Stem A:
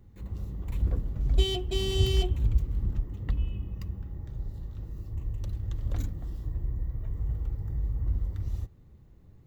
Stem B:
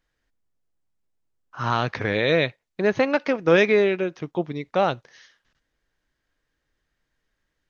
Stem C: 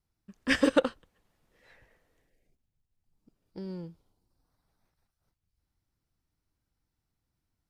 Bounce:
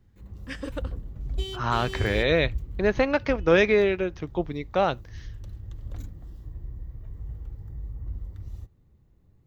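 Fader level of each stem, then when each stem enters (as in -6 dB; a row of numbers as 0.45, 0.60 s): -6.0, -2.0, -11.5 dB; 0.00, 0.00, 0.00 s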